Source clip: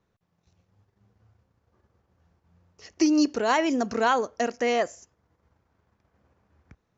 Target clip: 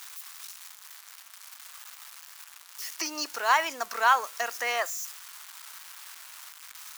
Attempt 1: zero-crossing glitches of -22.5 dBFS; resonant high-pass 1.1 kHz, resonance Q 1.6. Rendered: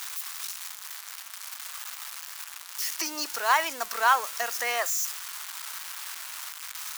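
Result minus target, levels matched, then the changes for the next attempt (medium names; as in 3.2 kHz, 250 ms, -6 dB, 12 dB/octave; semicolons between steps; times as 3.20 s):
zero-crossing glitches: distortion +7 dB
change: zero-crossing glitches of -30 dBFS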